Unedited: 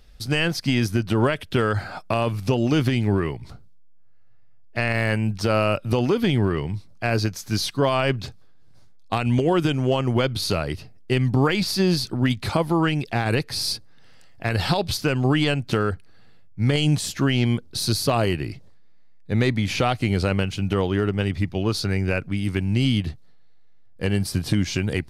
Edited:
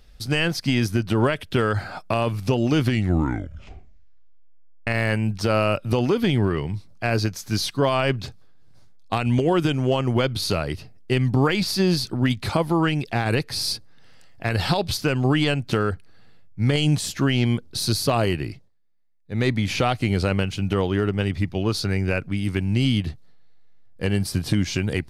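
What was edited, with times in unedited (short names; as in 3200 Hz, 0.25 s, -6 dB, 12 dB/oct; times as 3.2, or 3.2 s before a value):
2.82 tape stop 2.05 s
18.47–19.47 dip -17 dB, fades 0.22 s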